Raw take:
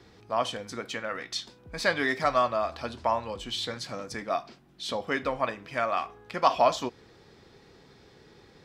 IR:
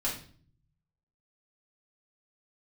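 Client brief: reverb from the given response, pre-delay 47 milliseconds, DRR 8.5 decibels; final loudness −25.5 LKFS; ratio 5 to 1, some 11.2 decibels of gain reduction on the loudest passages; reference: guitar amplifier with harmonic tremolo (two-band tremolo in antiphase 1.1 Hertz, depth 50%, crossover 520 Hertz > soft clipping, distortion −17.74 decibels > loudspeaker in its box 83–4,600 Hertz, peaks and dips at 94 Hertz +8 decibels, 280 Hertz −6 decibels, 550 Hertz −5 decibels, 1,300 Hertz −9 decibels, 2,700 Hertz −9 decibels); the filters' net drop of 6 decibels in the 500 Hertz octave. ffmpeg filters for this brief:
-filter_complex "[0:a]equalizer=frequency=500:width_type=o:gain=-4.5,acompressor=threshold=-31dB:ratio=5,asplit=2[link_01][link_02];[1:a]atrim=start_sample=2205,adelay=47[link_03];[link_02][link_03]afir=irnorm=-1:irlink=0,volume=-14dB[link_04];[link_01][link_04]amix=inputs=2:normalize=0,acrossover=split=520[link_05][link_06];[link_05]aeval=exprs='val(0)*(1-0.5/2+0.5/2*cos(2*PI*1.1*n/s))':channel_layout=same[link_07];[link_06]aeval=exprs='val(0)*(1-0.5/2-0.5/2*cos(2*PI*1.1*n/s))':channel_layout=same[link_08];[link_07][link_08]amix=inputs=2:normalize=0,asoftclip=threshold=-27.5dB,highpass=83,equalizer=frequency=94:width_type=q:width=4:gain=8,equalizer=frequency=280:width_type=q:width=4:gain=-6,equalizer=frequency=550:width_type=q:width=4:gain=-5,equalizer=frequency=1300:width_type=q:width=4:gain=-9,equalizer=frequency=2700:width_type=q:width=4:gain=-9,lowpass=frequency=4600:width=0.5412,lowpass=frequency=4600:width=1.3066,volume=17dB"

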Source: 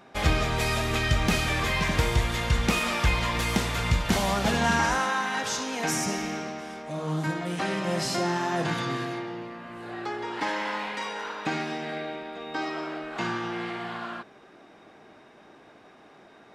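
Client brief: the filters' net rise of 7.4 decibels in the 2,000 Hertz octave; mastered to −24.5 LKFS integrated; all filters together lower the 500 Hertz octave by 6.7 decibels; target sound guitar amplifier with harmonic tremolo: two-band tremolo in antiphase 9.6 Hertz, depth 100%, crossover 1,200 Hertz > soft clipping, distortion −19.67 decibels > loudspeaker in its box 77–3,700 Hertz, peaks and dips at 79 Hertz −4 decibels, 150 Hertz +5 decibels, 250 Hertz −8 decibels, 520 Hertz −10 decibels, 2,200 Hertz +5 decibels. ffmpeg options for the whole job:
ffmpeg -i in.wav -filter_complex "[0:a]equalizer=frequency=500:width_type=o:gain=-5,equalizer=frequency=2000:width_type=o:gain=6.5,acrossover=split=1200[link_01][link_02];[link_01]aeval=exprs='val(0)*(1-1/2+1/2*cos(2*PI*9.6*n/s))':channel_layout=same[link_03];[link_02]aeval=exprs='val(0)*(1-1/2-1/2*cos(2*PI*9.6*n/s))':channel_layout=same[link_04];[link_03][link_04]amix=inputs=2:normalize=0,asoftclip=threshold=-19dB,highpass=77,equalizer=frequency=79:width_type=q:width=4:gain=-4,equalizer=frequency=150:width_type=q:width=4:gain=5,equalizer=frequency=250:width_type=q:width=4:gain=-8,equalizer=frequency=520:width_type=q:width=4:gain=-10,equalizer=frequency=2200:width_type=q:width=4:gain=5,lowpass=frequency=3700:width=0.5412,lowpass=frequency=3700:width=1.3066,volume=6dB" out.wav

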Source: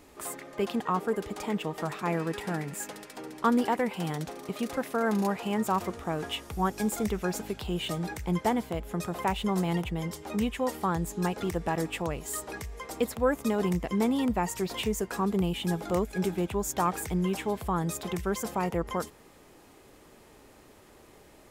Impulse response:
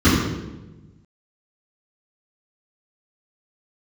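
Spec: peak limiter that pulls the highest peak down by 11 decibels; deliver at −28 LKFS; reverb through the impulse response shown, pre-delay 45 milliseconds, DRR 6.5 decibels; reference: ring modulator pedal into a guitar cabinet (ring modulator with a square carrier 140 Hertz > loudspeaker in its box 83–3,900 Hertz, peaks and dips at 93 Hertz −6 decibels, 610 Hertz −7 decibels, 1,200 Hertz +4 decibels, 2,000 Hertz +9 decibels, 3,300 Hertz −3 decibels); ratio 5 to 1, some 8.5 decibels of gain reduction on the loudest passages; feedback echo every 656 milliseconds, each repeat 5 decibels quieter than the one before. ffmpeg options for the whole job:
-filter_complex "[0:a]acompressor=threshold=-30dB:ratio=5,alimiter=level_in=5.5dB:limit=-24dB:level=0:latency=1,volume=-5.5dB,aecho=1:1:656|1312|1968|2624|3280|3936|4592:0.562|0.315|0.176|0.0988|0.0553|0.031|0.0173,asplit=2[link_01][link_02];[1:a]atrim=start_sample=2205,adelay=45[link_03];[link_02][link_03]afir=irnorm=-1:irlink=0,volume=-29.5dB[link_04];[link_01][link_04]amix=inputs=2:normalize=0,aeval=exprs='val(0)*sgn(sin(2*PI*140*n/s))':channel_layout=same,highpass=83,equalizer=frequency=93:width_type=q:width=4:gain=-6,equalizer=frequency=610:width_type=q:width=4:gain=-7,equalizer=frequency=1200:width_type=q:width=4:gain=4,equalizer=frequency=2000:width_type=q:width=4:gain=9,equalizer=frequency=3300:width_type=q:width=4:gain=-3,lowpass=frequency=3900:width=0.5412,lowpass=frequency=3900:width=1.3066,volume=4dB"

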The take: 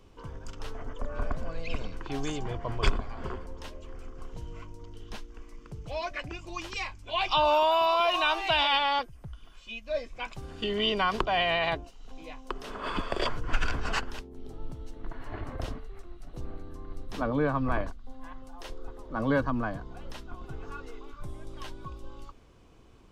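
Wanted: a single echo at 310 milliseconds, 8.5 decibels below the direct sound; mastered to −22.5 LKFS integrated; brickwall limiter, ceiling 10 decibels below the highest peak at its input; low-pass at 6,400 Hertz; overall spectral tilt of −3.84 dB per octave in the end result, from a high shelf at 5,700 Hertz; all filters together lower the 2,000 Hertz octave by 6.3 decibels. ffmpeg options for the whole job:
ffmpeg -i in.wav -af "lowpass=6400,equalizer=frequency=2000:width_type=o:gain=-7.5,highshelf=frequency=5700:gain=-9,alimiter=limit=-20.5dB:level=0:latency=1,aecho=1:1:310:0.376,volume=11.5dB" out.wav

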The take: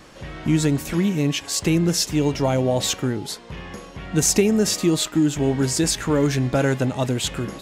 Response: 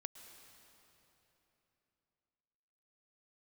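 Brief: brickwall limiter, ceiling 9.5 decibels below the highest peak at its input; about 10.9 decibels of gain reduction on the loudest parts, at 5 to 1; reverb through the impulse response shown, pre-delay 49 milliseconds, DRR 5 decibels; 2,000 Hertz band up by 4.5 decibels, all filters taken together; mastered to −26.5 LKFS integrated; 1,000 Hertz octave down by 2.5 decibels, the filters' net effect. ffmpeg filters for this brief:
-filter_complex "[0:a]equalizer=frequency=1000:width_type=o:gain=-5.5,equalizer=frequency=2000:width_type=o:gain=7.5,acompressor=threshold=-26dB:ratio=5,alimiter=level_in=1dB:limit=-24dB:level=0:latency=1,volume=-1dB,asplit=2[link_01][link_02];[1:a]atrim=start_sample=2205,adelay=49[link_03];[link_02][link_03]afir=irnorm=-1:irlink=0,volume=-1dB[link_04];[link_01][link_04]amix=inputs=2:normalize=0,volume=5.5dB"

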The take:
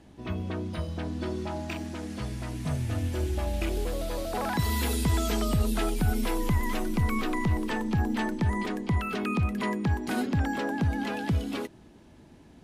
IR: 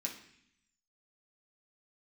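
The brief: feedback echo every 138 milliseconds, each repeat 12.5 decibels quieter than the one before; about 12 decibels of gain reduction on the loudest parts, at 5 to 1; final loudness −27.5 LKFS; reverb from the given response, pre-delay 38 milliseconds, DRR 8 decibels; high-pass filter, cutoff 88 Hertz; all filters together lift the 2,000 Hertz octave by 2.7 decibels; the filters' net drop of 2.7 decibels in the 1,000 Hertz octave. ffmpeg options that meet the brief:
-filter_complex "[0:a]highpass=88,equalizer=frequency=1000:width_type=o:gain=-4.5,equalizer=frequency=2000:width_type=o:gain=4.5,acompressor=threshold=-37dB:ratio=5,aecho=1:1:138|276|414:0.237|0.0569|0.0137,asplit=2[link_01][link_02];[1:a]atrim=start_sample=2205,adelay=38[link_03];[link_02][link_03]afir=irnorm=-1:irlink=0,volume=-8dB[link_04];[link_01][link_04]amix=inputs=2:normalize=0,volume=10.5dB"

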